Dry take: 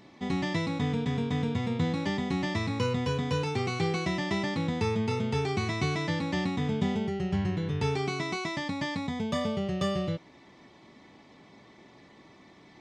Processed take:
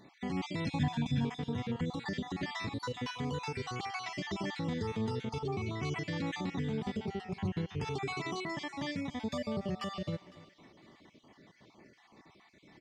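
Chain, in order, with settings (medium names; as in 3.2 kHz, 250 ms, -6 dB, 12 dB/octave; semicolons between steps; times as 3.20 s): random holes in the spectrogram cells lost 36%; delay 287 ms -21 dB; peak limiter -26 dBFS, peak gain reduction 9 dB; 0.65–1.25 s: comb 1.2 ms, depth 96%; 5.39–5.83 s: low-pass 2.7 kHz 6 dB/octave; thinning echo 506 ms, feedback 37%, high-pass 950 Hz, level -19.5 dB; upward expansion 1.5:1, over -38 dBFS; trim +1.5 dB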